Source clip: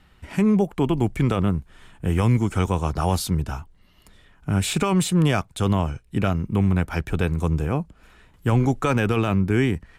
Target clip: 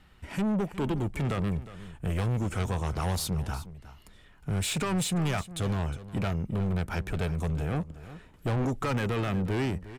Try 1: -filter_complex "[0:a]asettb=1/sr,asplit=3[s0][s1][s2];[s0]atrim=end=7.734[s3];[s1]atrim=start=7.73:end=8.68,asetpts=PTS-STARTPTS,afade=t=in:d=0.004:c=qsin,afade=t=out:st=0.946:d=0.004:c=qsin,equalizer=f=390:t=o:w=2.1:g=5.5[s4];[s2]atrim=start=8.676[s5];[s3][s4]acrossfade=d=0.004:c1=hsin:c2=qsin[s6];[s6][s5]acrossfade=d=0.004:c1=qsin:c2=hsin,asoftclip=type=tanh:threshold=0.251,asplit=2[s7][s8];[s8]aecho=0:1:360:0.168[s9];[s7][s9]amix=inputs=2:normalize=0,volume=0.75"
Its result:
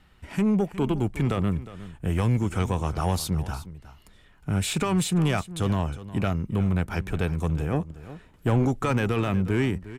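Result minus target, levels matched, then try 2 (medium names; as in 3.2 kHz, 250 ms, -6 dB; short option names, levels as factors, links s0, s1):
saturation: distortion -11 dB
-filter_complex "[0:a]asettb=1/sr,asplit=3[s0][s1][s2];[s0]atrim=end=7.734[s3];[s1]atrim=start=7.73:end=8.68,asetpts=PTS-STARTPTS,afade=t=in:d=0.004:c=qsin,afade=t=out:st=0.946:d=0.004:c=qsin,equalizer=f=390:t=o:w=2.1:g=5.5[s4];[s2]atrim=start=8.676[s5];[s3][s4]acrossfade=d=0.004:c1=hsin:c2=qsin[s6];[s6][s5]acrossfade=d=0.004:c1=qsin:c2=hsin,asoftclip=type=tanh:threshold=0.0794,asplit=2[s7][s8];[s8]aecho=0:1:360:0.168[s9];[s7][s9]amix=inputs=2:normalize=0,volume=0.75"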